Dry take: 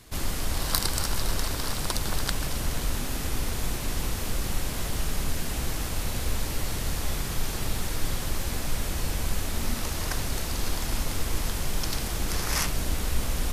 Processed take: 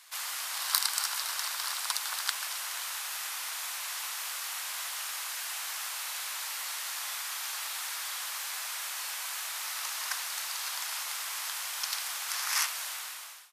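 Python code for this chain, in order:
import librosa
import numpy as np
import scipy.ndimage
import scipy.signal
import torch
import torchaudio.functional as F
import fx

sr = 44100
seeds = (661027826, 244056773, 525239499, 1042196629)

y = fx.fade_out_tail(x, sr, length_s=0.68)
y = scipy.signal.sosfilt(scipy.signal.butter(4, 960.0, 'highpass', fs=sr, output='sos'), y)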